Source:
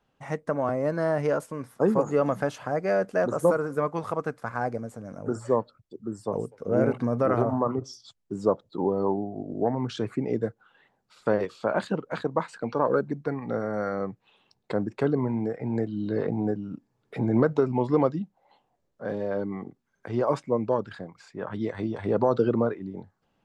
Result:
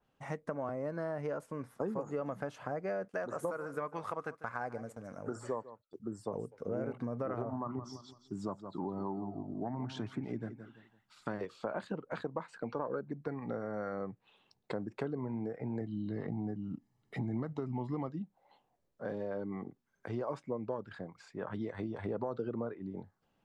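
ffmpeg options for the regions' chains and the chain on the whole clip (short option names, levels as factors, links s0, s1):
-filter_complex "[0:a]asettb=1/sr,asplit=3[s0][s1][s2];[s0]atrim=end=3.084[s3];[s1]atrim=start=3.08:end=6,asetpts=PTS-STARTPTS,afade=t=in:d=0.004:c=qsin,afade=t=out:st=2.916:d=0.004:c=qsin,agate=range=0.2:threshold=0.00501:ratio=16:release=100:detection=peak,tiltshelf=f=710:g=-5,aecho=1:1:147:0.119,atrim=end_sample=128772[s4];[s2]atrim=start=5.996[s5];[s3][s4]acrossfade=d=0.004:c1=hsin:c2=qsin[s6];[s6][s5]acrossfade=d=0.004:c1=qsin:c2=hsin,asettb=1/sr,asplit=3[s7][s8][s9];[s7]atrim=end=7.564[s10];[s8]atrim=start=7.56:end=11.41,asetpts=PTS-STARTPTS,afade=t=in:d=0.004:c=qsin,afade=t=out:st=3.846:d=0.004:c=qsin,equalizer=f=480:w=3.1:g=-15,aecho=1:1:169|338|507:0.224|0.0739|0.0244,atrim=end_sample=169785[s11];[s9]atrim=start=11.406[s12];[s10][s11]acrossfade=d=0.004:c1=hsin:c2=qsin[s13];[s13][s12]acrossfade=d=0.004:c1=qsin:c2=hsin,asettb=1/sr,asplit=3[s14][s15][s16];[s14]atrim=end=15.814[s17];[s15]atrim=start=15.81:end=18.09,asetpts=PTS-STARTPTS,afade=t=in:d=0.004:c=qsin,afade=t=out:st=2.276:d=0.004:c=qsin,equalizer=f=1000:t=o:w=0.48:g=-6,aecho=1:1:1:0.57,atrim=end_sample=100548[s18];[s16]atrim=start=18.086[s19];[s17][s18]acrossfade=d=0.004:c1=hsin:c2=qsin[s20];[s20][s19]acrossfade=d=0.004:c1=qsin:c2=hsin,acompressor=threshold=0.0316:ratio=4,adynamicequalizer=threshold=0.00158:dfrequency=3000:dqfactor=0.7:tfrequency=3000:tqfactor=0.7:attack=5:release=100:ratio=0.375:range=3:mode=cutabove:tftype=highshelf,volume=0.596"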